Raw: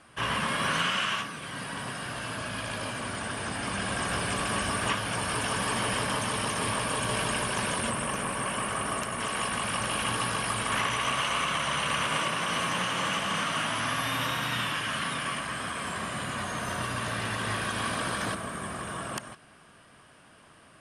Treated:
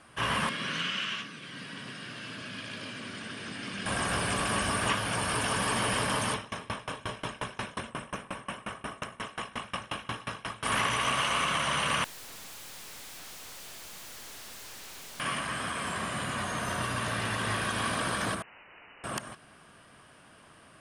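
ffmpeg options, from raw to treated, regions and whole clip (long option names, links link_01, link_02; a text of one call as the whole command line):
ffmpeg -i in.wav -filter_complex "[0:a]asettb=1/sr,asplit=3[link_01][link_02][link_03];[link_01]atrim=end=0.494[link_04];[link_02]atrim=start=0.49:end=3.86,asetpts=PTS-STARTPTS,afade=type=in:duration=0.004:curve=qsin,afade=type=out:start_time=3.366:duration=0.004:curve=qsin,highpass=180,lowpass=5100,equalizer=frequency=830:width_type=o:width=1.6:gain=-14.5[link_05];[link_03]atrim=start=3.856[link_06];[link_04][link_05]acrossfade=duration=0.004:curve1=hsin:curve2=qsin[link_07];[link_07][link_06]acrossfade=duration=0.004:curve1=qsin:curve2=hsin,asettb=1/sr,asplit=3[link_08][link_09][link_10];[link_08]atrim=end=6.344[link_11];[link_09]atrim=start=6.34:end=10.63,asetpts=PTS-STARTPTS,afade=type=in:duration=0.004:curve=qsin,afade=type=out:start_time=4.286:duration=0.004:curve=qsin,acrossover=split=6600[link_12][link_13];[link_13]acompressor=threshold=-52dB:ratio=4:attack=1:release=60[link_14];[link_12][link_14]amix=inputs=2:normalize=0,asuperstop=centerf=4600:order=4:qfactor=7.7,aeval=exprs='val(0)*pow(10,-26*if(lt(mod(5.6*n/s,1),2*abs(5.6)/1000),1-mod(5.6*n/s,1)/(2*abs(5.6)/1000),(mod(5.6*n/s,1)-2*abs(5.6)/1000)/(1-2*abs(5.6)/1000))/20)':channel_layout=same[link_15];[link_10]atrim=start=10.626[link_16];[link_11][link_15]acrossfade=duration=0.004:curve1=hsin:curve2=qsin[link_17];[link_17][link_16]acrossfade=duration=0.004:curve1=qsin:curve2=hsin,asettb=1/sr,asplit=3[link_18][link_19][link_20];[link_18]atrim=end=12.044[link_21];[link_19]atrim=start=12.04:end=15.2,asetpts=PTS-STARTPTS,afade=type=in:duration=0.004:curve=qsin,afade=type=out:start_time=3.156:duration=0.004:curve=qsin,aeval=exprs='(mod(31.6*val(0)+1,2)-1)/31.6':channel_layout=same,aeval=exprs='(tanh(178*val(0)+0.5)-tanh(0.5))/178':channel_layout=same[link_22];[link_20]atrim=start=15.196[link_23];[link_21][link_22]acrossfade=duration=0.004:curve1=hsin:curve2=qsin[link_24];[link_24][link_23]acrossfade=duration=0.004:curve1=qsin:curve2=hsin,asettb=1/sr,asplit=3[link_25][link_26][link_27];[link_25]atrim=end=18.424[link_28];[link_26]atrim=start=18.42:end=19.04,asetpts=PTS-STARTPTS,afade=type=in:duration=0.004:curve=qsin,afade=type=out:start_time=0.616:duration=0.004:curve=qsin,highpass=frequency=51:poles=1,aeval=exprs='(mod(106*val(0)+1,2)-1)/106':channel_layout=same,lowpass=frequency=2600:width_type=q:width=0.5098,lowpass=frequency=2600:width_type=q:width=0.6013,lowpass=frequency=2600:width_type=q:width=0.9,lowpass=frequency=2600:width_type=q:width=2.563,afreqshift=-3000[link_29];[link_27]atrim=start=19.036[link_30];[link_28][link_29]acrossfade=duration=0.004:curve1=hsin:curve2=qsin[link_31];[link_31][link_30]acrossfade=duration=0.004:curve1=qsin:curve2=hsin" out.wav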